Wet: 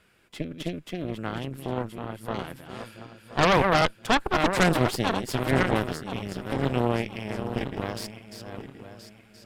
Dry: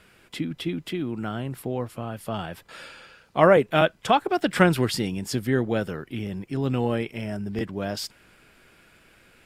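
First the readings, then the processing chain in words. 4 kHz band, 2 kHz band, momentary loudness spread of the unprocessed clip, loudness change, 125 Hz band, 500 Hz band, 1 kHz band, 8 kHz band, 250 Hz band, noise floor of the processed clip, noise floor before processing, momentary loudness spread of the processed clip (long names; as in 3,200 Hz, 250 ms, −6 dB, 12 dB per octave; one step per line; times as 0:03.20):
+1.0 dB, +1.0 dB, 13 LU, −1.5 dB, −1.0 dB, −3.5 dB, 0.0 dB, 0.0 dB, −2.0 dB, −56 dBFS, −57 dBFS, 19 LU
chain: feedback delay that plays each chunk backwards 512 ms, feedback 60%, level −6.5 dB
harmonic generator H 8 −9 dB, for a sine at −2 dBFS
level −7 dB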